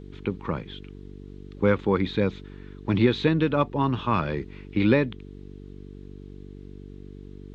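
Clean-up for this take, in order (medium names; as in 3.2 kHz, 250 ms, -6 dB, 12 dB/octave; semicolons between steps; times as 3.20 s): de-hum 48.4 Hz, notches 9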